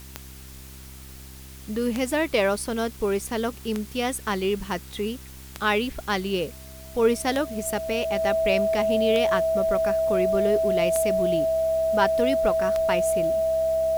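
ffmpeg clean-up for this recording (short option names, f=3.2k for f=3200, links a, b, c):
-af "adeclick=t=4,bandreject=f=65.9:t=h:w=4,bandreject=f=131.8:t=h:w=4,bandreject=f=197.7:t=h:w=4,bandreject=f=263.6:t=h:w=4,bandreject=f=329.5:t=h:w=4,bandreject=f=395.4:t=h:w=4,bandreject=f=650:w=30,afftdn=nr=28:nf=-42"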